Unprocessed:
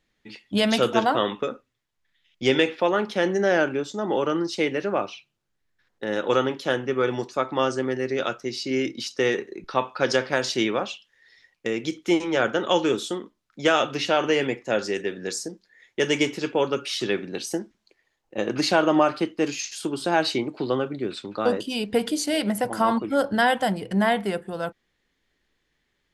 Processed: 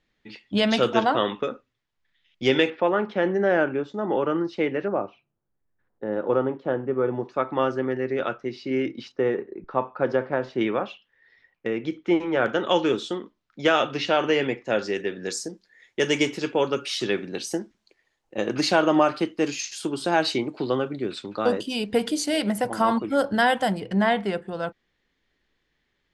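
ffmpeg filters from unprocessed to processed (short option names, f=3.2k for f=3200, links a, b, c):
-af "asetnsamples=n=441:p=0,asendcmd='2.7 lowpass f 2100;4.88 lowpass f 1000;7.25 lowpass f 2200;9.12 lowpass f 1200;10.61 lowpass f 2200;12.46 lowpass f 4700;15.23 lowpass f 11000;23.8 lowpass f 5500',lowpass=5.3k"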